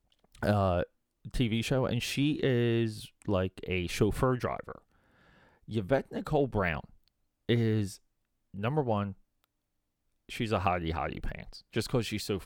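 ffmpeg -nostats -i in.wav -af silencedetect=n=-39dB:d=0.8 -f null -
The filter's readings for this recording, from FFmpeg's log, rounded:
silence_start: 4.78
silence_end: 5.69 | silence_duration: 0.91
silence_start: 9.12
silence_end: 10.29 | silence_duration: 1.17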